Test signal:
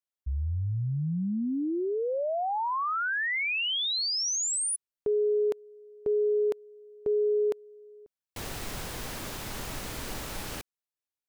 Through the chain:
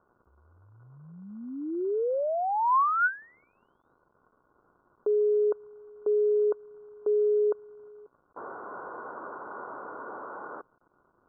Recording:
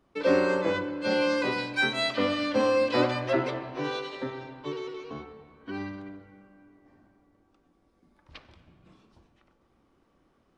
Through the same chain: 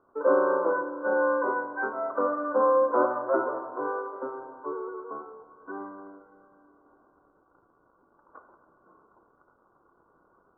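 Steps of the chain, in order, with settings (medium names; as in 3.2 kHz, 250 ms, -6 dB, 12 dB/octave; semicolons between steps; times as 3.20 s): high-pass 580 Hz 12 dB/octave; crackle 410 per s -49 dBFS; rippled Chebyshev low-pass 1.5 kHz, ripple 6 dB; trim +8.5 dB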